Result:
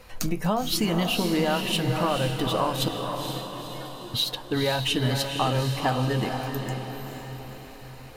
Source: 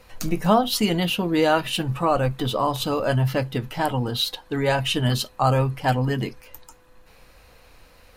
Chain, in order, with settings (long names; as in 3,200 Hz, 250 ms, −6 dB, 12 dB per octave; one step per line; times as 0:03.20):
downward compressor, threshold −24 dBFS, peak gain reduction 11 dB
0:02.88–0:04.14: tuned comb filter 360 Hz, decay 0.19 s, harmonics all, mix 100%
on a send: feedback delay with all-pass diffusion 483 ms, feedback 52%, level −5 dB
on the sum: level +2 dB